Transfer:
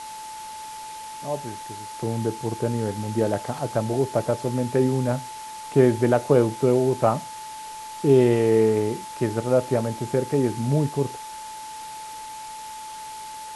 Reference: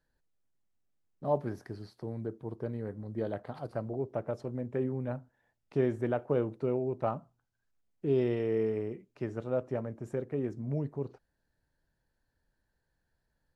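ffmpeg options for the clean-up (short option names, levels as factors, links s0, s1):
-af "bandreject=f=870:w=30,afwtdn=0.0089,asetnsamples=n=441:p=0,asendcmd='1.95 volume volume -11.5dB',volume=1"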